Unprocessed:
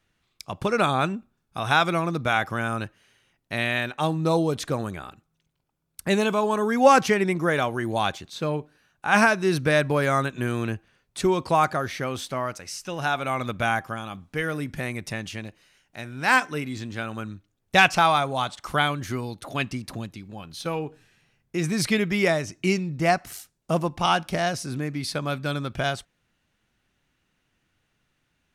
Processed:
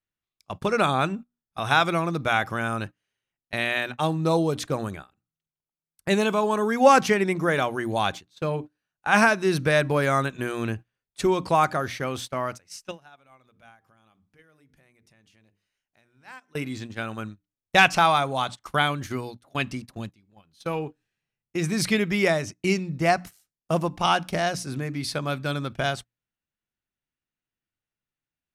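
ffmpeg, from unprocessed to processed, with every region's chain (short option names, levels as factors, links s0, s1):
-filter_complex "[0:a]asettb=1/sr,asplit=3[s0][s1][s2];[s0]atrim=end=12.914[s3];[s1]atrim=start=12.91:end=16.55,asetpts=PTS-STARTPTS,afade=t=in:d=0.004:c=qsin,afade=t=out:st=3.636:d=0.004:c=qsin,bandreject=f=50:t=h:w=6,bandreject=f=100:t=h:w=6,bandreject=f=150:t=h:w=6,bandreject=f=200:t=h:w=6,bandreject=f=250:t=h:w=6,bandreject=f=300:t=h:w=6,bandreject=f=350:t=h:w=6,bandreject=f=400:t=h:w=6,bandreject=f=450:t=h:w=6,acompressor=threshold=0.0158:ratio=4:attack=3.2:release=140:knee=1:detection=peak[s4];[s2]atrim=start=16.546[s5];[s3][s4]acrossfade=d=0.004:c1=hsin:c2=qsin[s6];[s6][s5]acrossfade=d=0.004:c1=qsin:c2=hsin,bandreject=f=60:t=h:w=6,bandreject=f=120:t=h:w=6,bandreject=f=180:t=h:w=6,bandreject=f=240:t=h:w=6,bandreject=f=300:t=h:w=6,agate=range=0.0891:threshold=0.02:ratio=16:detection=peak"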